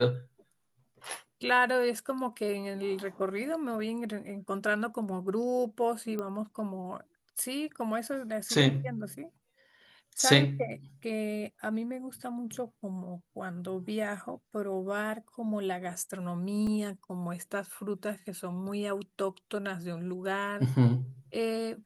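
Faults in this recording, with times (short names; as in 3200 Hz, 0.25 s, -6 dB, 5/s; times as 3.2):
6.19 pop -22 dBFS
16.67 gap 2.4 ms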